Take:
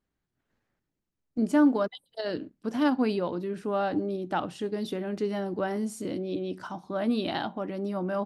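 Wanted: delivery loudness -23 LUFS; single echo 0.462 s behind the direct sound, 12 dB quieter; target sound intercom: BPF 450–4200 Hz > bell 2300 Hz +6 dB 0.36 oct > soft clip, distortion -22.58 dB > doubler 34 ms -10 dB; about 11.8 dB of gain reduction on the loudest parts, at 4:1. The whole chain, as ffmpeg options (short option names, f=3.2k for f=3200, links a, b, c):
-filter_complex "[0:a]acompressor=threshold=-32dB:ratio=4,highpass=450,lowpass=4.2k,equalizer=f=2.3k:t=o:w=0.36:g=6,aecho=1:1:462:0.251,asoftclip=threshold=-27dB,asplit=2[a][b];[b]adelay=34,volume=-10dB[c];[a][c]amix=inputs=2:normalize=0,volume=17dB"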